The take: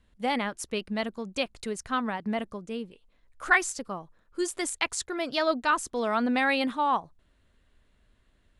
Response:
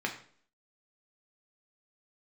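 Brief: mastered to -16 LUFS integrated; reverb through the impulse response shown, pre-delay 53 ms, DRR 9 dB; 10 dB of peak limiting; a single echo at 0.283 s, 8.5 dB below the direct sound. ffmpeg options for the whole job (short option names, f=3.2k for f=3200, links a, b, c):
-filter_complex "[0:a]alimiter=limit=-18.5dB:level=0:latency=1,aecho=1:1:283:0.376,asplit=2[a][b];[1:a]atrim=start_sample=2205,adelay=53[c];[b][c]afir=irnorm=-1:irlink=0,volume=-15dB[d];[a][d]amix=inputs=2:normalize=0,volume=13.5dB"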